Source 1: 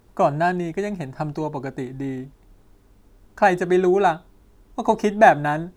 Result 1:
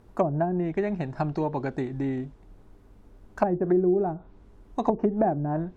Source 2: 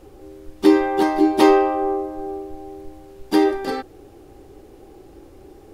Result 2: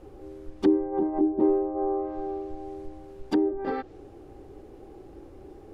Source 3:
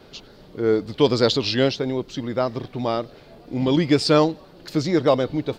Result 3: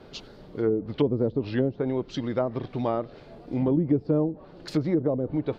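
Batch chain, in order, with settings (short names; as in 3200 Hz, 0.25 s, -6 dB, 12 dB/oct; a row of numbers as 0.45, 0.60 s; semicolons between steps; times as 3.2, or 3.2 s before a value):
treble ducked by the level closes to 390 Hz, closed at -15 dBFS; in parallel at -2 dB: compressor, threshold -29 dBFS; on the sum: mismatched tape noise reduction decoder only; match loudness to -27 LUFS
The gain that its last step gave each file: -3.5, -6.5, -5.0 dB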